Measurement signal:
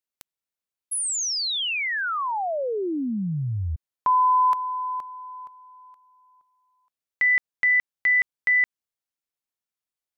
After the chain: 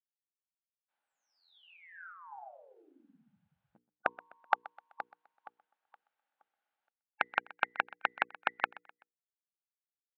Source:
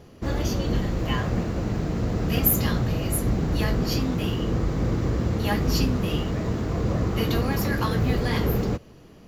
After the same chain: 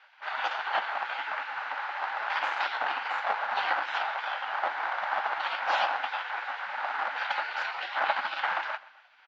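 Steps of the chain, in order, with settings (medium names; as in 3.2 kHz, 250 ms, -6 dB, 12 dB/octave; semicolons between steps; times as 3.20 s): spectral gate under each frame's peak -25 dB weak; tilt shelf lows +3.5 dB, about 840 Hz; hum notches 60/120/180/240/300/360/420/480 Hz; in parallel at -5.5 dB: bit crusher 6-bit; on the sum: cabinet simulation 380–3300 Hz, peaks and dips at 390 Hz -8 dB, 820 Hz +10 dB, 1.5 kHz +8 dB; on a send: feedback delay 127 ms, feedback 40%, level -20 dB; on the sum: trim +8 dB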